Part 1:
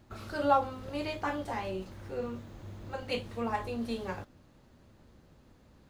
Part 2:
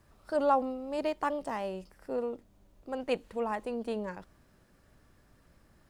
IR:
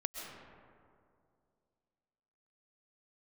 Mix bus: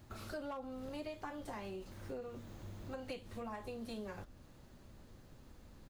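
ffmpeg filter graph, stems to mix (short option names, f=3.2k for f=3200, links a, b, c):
-filter_complex "[0:a]highshelf=f=5.8k:g=8,acompressor=threshold=-50dB:ratio=1.5,volume=30dB,asoftclip=hard,volume=-30dB,volume=-1dB[a];[1:a]aemphasis=mode=reproduction:type=bsi,adelay=14,volume=-9.5dB[b];[a][b]amix=inputs=2:normalize=0,acompressor=threshold=-41dB:ratio=6"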